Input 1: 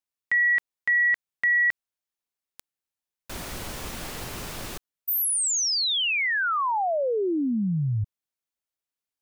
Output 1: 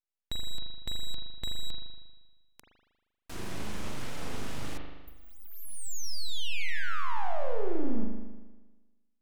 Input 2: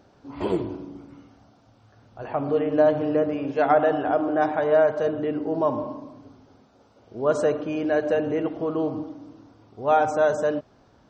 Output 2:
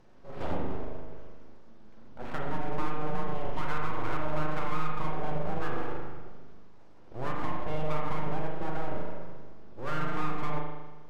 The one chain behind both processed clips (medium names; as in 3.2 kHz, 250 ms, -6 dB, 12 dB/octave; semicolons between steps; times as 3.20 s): low-pass that closes with the level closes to 1 kHz, closed at -17 dBFS; peaking EQ 120 Hz +11 dB 1.8 oct; compression 6:1, threshold -22 dBFS; full-wave rectifier; spring tank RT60 1.2 s, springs 39 ms, chirp 55 ms, DRR 0 dB; trim -6.5 dB